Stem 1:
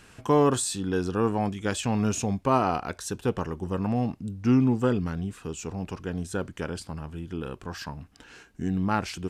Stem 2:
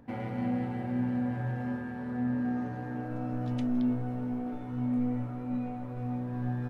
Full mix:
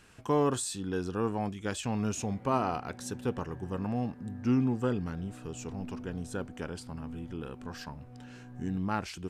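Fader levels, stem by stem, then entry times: -6.0 dB, -14.5 dB; 0.00 s, 2.10 s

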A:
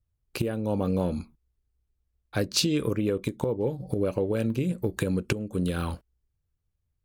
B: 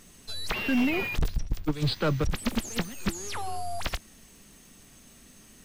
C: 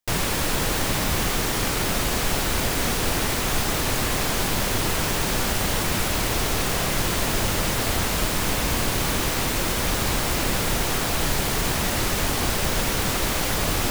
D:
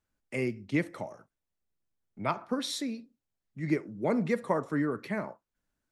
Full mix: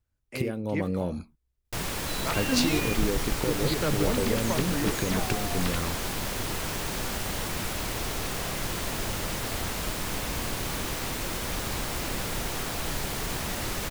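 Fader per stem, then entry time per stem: -3.0 dB, -3.0 dB, -8.0 dB, -3.5 dB; 0.00 s, 1.80 s, 1.65 s, 0.00 s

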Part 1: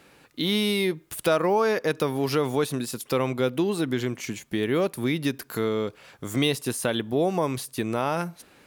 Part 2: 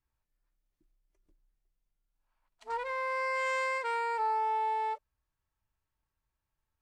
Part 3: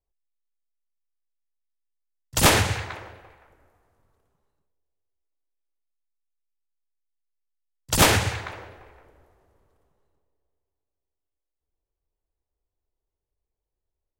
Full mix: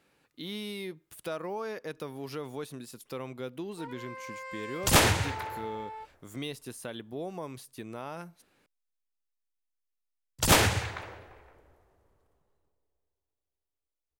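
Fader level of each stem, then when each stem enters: -14.0 dB, -10.0 dB, -4.0 dB; 0.00 s, 1.10 s, 2.50 s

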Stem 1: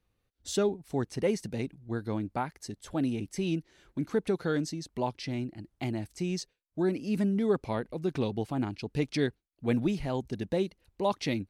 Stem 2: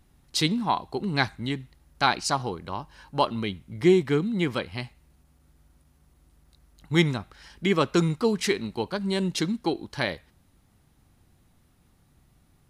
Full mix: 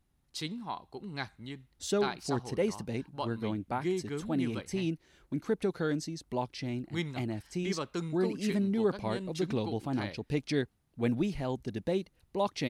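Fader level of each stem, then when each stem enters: -2.0 dB, -13.5 dB; 1.35 s, 0.00 s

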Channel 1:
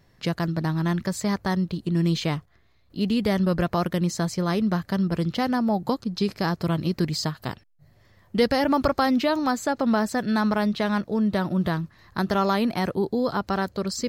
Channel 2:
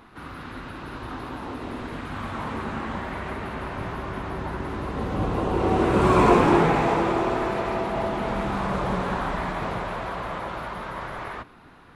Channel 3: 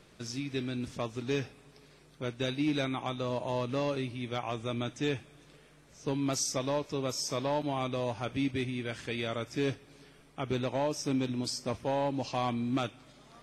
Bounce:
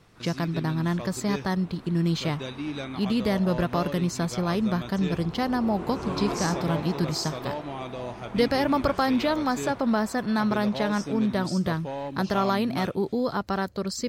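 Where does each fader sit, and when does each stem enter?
-2.0 dB, -15.0 dB, -3.0 dB; 0.00 s, 0.00 s, 0.00 s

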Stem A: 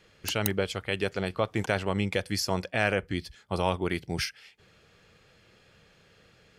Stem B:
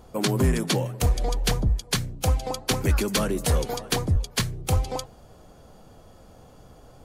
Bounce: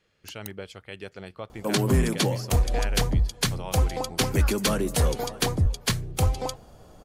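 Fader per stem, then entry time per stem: -10.0 dB, 0.0 dB; 0.00 s, 1.50 s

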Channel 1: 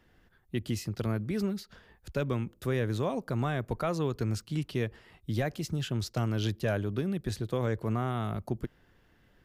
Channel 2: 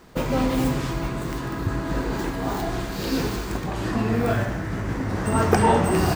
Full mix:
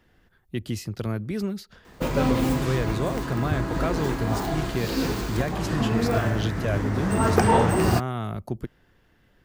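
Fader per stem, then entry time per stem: +2.5 dB, -1.0 dB; 0.00 s, 1.85 s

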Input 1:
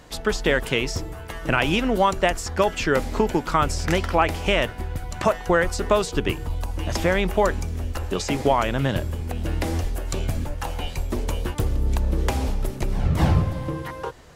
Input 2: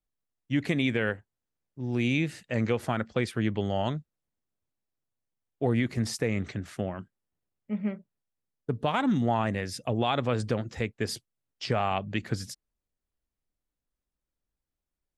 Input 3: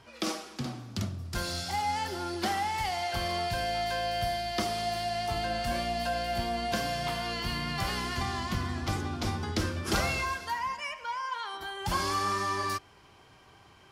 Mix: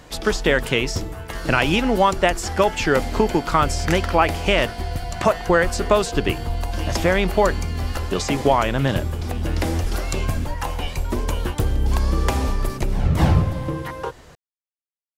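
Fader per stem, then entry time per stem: +2.5 dB, mute, -4.5 dB; 0.00 s, mute, 0.00 s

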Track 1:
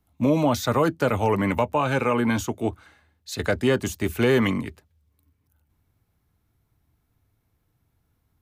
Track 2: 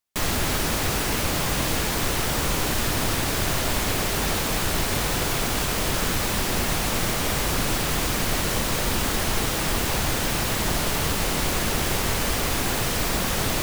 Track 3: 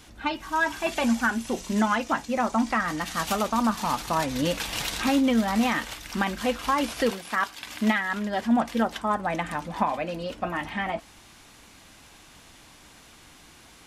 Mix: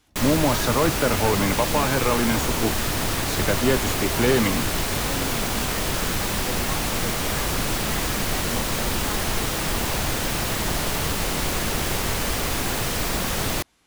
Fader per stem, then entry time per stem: -0.5 dB, -0.5 dB, -13.0 dB; 0.00 s, 0.00 s, 0.00 s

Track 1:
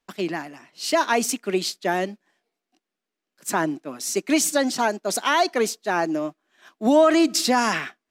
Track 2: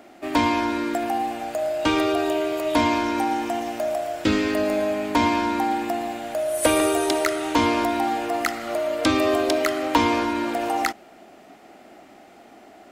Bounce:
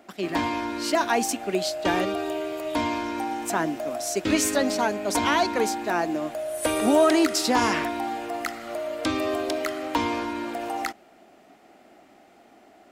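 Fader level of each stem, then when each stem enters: -3.0 dB, -6.0 dB; 0.00 s, 0.00 s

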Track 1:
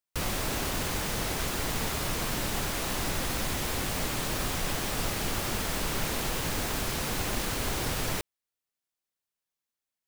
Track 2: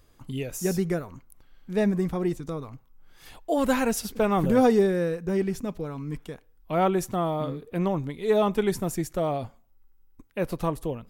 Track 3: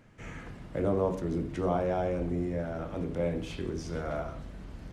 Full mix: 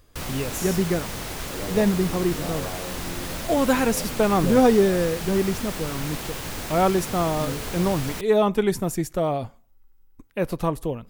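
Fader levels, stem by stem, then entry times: -1.5 dB, +3.0 dB, -6.0 dB; 0.00 s, 0.00 s, 0.75 s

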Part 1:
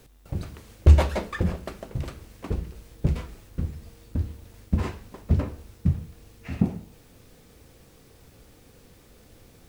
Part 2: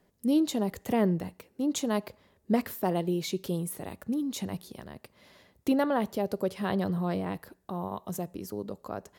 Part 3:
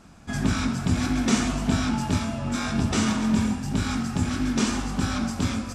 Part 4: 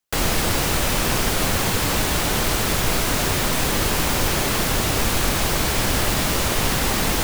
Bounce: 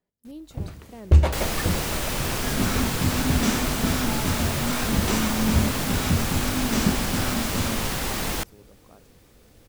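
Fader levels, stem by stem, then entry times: -1.0 dB, -16.5 dB, -2.0 dB, -6.5 dB; 0.25 s, 0.00 s, 2.15 s, 1.20 s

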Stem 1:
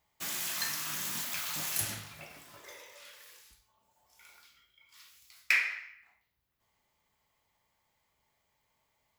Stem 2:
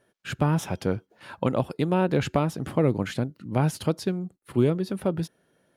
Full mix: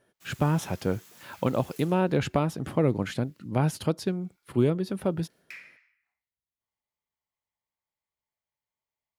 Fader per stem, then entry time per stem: -18.0 dB, -1.5 dB; 0.00 s, 0.00 s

